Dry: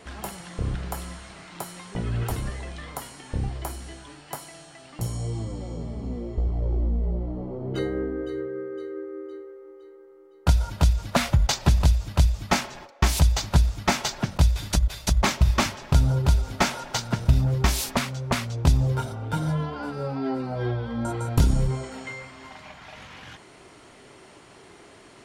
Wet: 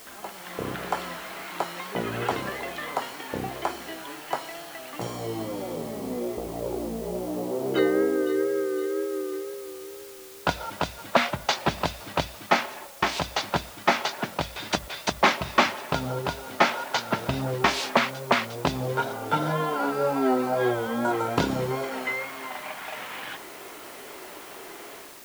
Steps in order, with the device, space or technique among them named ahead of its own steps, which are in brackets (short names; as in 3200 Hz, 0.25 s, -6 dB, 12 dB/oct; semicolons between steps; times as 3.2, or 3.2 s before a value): dictaphone (BPF 340–3400 Hz; AGC; wow and flutter; white noise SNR 19 dB); gain -3 dB